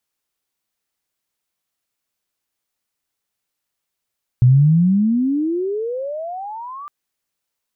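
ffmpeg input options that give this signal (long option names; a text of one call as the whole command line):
ffmpeg -f lavfi -i "aevalsrc='pow(10,(-7-23*t/2.46)/20)*sin(2*PI*120*2.46/log(1200/120)*(exp(log(1200/120)*t/2.46)-1))':duration=2.46:sample_rate=44100" out.wav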